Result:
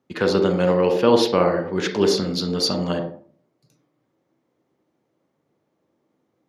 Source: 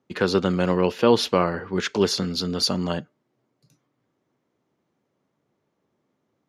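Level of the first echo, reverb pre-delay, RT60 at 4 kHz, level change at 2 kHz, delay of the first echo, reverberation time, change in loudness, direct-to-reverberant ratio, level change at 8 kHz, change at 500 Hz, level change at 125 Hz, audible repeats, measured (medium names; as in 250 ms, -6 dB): no echo, 34 ms, 0.30 s, +0.5 dB, no echo, 0.50 s, +2.5 dB, 3.5 dB, 0.0 dB, +4.0 dB, +1.0 dB, no echo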